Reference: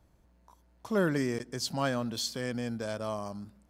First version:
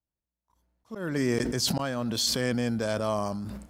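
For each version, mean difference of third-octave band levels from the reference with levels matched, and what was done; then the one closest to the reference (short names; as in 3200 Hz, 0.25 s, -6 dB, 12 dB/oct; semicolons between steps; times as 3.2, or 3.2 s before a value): 5.5 dB: gate -53 dBFS, range -28 dB; spectral noise reduction 7 dB; auto swell 0.377 s; sustainer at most 26 dB/s; gain +6 dB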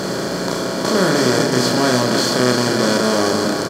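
12.0 dB: per-bin compression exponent 0.2; doubler 32 ms -2.5 dB; on a send: echo 0.309 s -7.5 dB; on the sum: gain +5.5 dB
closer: first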